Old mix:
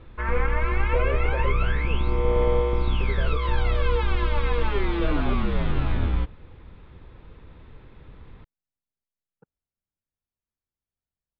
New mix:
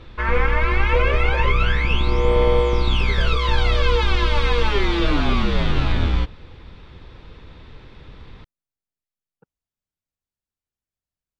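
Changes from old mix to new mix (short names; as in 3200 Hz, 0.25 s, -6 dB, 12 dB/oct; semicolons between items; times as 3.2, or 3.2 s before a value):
background +4.0 dB; master: remove air absorption 380 m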